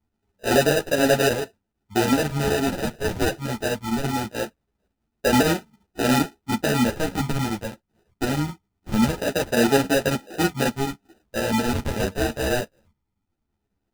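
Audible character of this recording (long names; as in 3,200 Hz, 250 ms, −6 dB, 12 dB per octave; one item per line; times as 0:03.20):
phaser sweep stages 12, 0.22 Hz, lowest notch 420–1,400 Hz
aliases and images of a low sample rate 1,100 Hz, jitter 0%
chopped level 9.2 Hz, depth 60%, duty 85%
a shimmering, thickened sound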